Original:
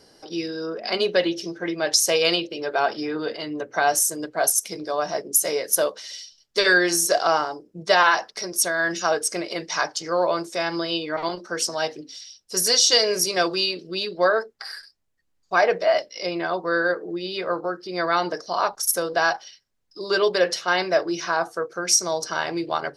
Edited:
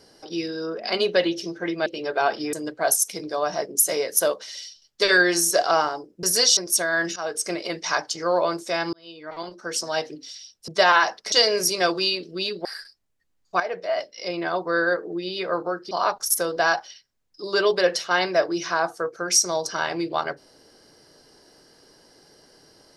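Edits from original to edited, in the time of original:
1.86–2.44 cut
3.11–4.09 cut
7.79–8.43 swap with 12.54–12.88
9.02–9.36 fade in, from -13.5 dB
10.79–11.87 fade in
14.21–14.63 cut
15.58–16.51 fade in, from -12.5 dB
17.89–18.48 cut

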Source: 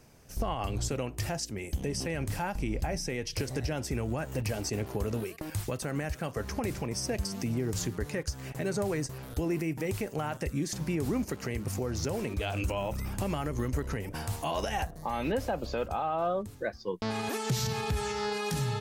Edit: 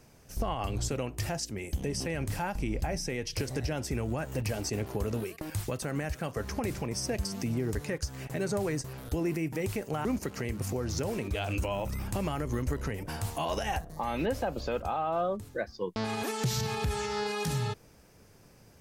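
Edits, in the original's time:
7.75–8 cut
10.3–11.11 cut

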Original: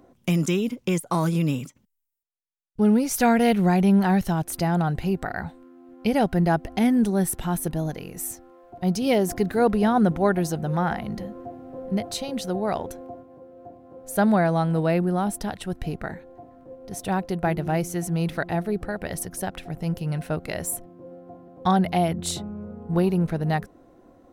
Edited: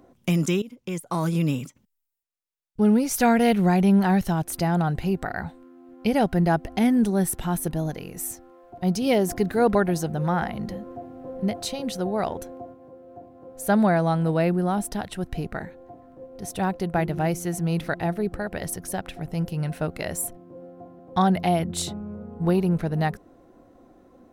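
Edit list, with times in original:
0.62–1.41 fade in, from -18 dB
9.75–10.24 cut

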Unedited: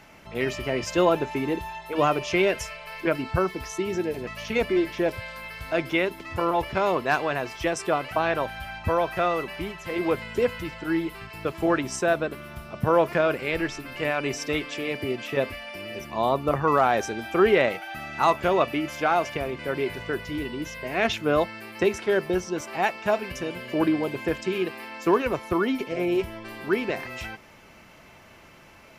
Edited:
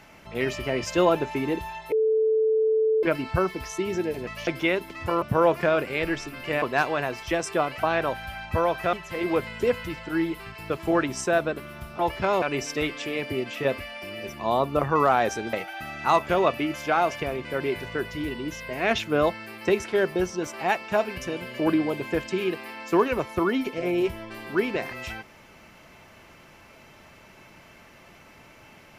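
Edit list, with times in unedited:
1.92–3.03 bleep 439 Hz -18.5 dBFS
4.47–5.77 cut
6.52–6.95 swap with 12.74–14.14
9.26–9.68 cut
17.25–17.67 cut

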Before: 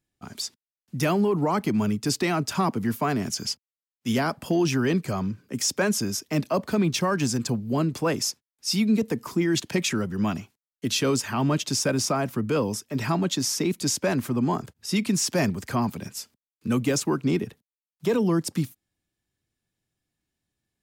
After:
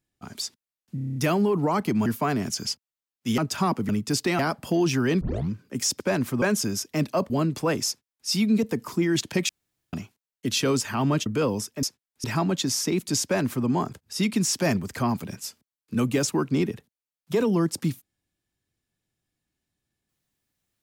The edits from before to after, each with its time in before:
0.95 stutter 0.03 s, 8 plays
1.85–2.35 swap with 2.86–4.18
5 tape start 0.28 s
6.67–7.69 cut
8.26–8.67 copy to 12.97
9.88–10.32 room tone
11.65–12.4 cut
13.97–14.39 copy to 5.79

